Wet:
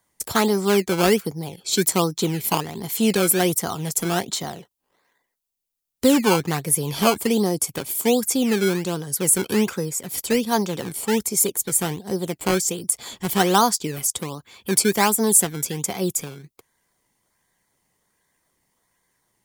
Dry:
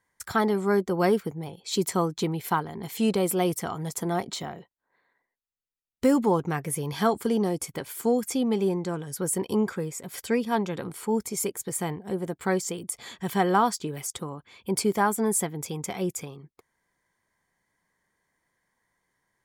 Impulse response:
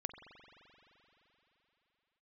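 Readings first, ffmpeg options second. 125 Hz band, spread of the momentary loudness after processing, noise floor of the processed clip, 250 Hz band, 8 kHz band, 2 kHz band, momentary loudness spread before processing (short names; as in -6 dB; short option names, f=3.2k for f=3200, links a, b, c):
+4.5 dB, 9 LU, -79 dBFS, +4.5 dB, +11.5 dB, +6.5 dB, 11 LU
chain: -filter_complex "[0:a]highshelf=f=6.4k:g=10,acrossover=split=140|1900[a][b][c];[b]acrusher=samples=16:mix=1:aa=0.000001:lfo=1:lforange=16:lforate=1.3[d];[a][d][c]amix=inputs=3:normalize=0,volume=4.5dB"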